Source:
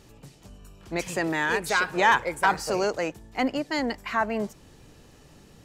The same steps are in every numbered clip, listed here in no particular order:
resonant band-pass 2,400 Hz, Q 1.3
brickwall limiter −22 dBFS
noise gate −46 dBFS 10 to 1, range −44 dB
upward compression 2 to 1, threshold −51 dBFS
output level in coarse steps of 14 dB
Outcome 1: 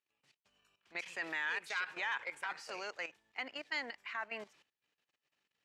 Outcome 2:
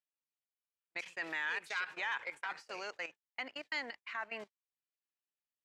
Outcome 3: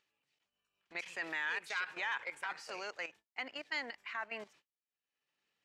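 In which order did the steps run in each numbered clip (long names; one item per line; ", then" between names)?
noise gate, then upward compression, then output level in coarse steps, then brickwall limiter, then resonant band-pass
output level in coarse steps, then brickwall limiter, then resonant band-pass, then upward compression, then noise gate
output level in coarse steps, then brickwall limiter, then noise gate, then resonant band-pass, then upward compression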